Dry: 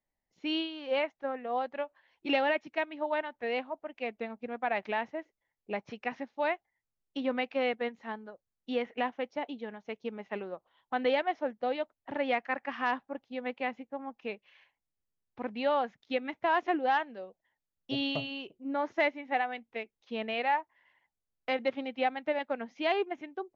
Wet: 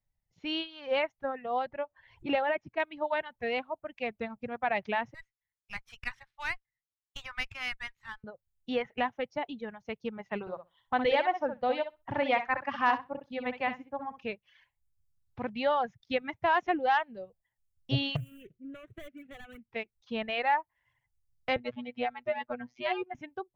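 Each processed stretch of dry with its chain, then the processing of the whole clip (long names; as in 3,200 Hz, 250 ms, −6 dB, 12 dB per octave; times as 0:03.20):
0:01.66–0:02.80: low-pass filter 1,400 Hz 6 dB per octave + upward compression, threshold −46 dBFS
0:05.14–0:08.24: high-pass filter 1,200 Hz 24 dB per octave + windowed peak hold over 3 samples
0:10.40–0:14.23: parametric band 1,000 Hz +4.5 dB 0.59 octaves + repeating echo 64 ms, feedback 16%, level −5 dB
0:18.16–0:19.72: running median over 25 samples + downward compressor 5 to 1, threshold −39 dBFS + phaser with its sweep stopped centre 2,100 Hz, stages 4
0:21.56–0:23.15: low-pass filter 3,400 Hz 6 dB per octave + phases set to zero 122 Hz
whole clip: automatic gain control gain up to 6 dB; reverb reduction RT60 0.87 s; low shelf with overshoot 180 Hz +13.5 dB, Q 1.5; level −3.5 dB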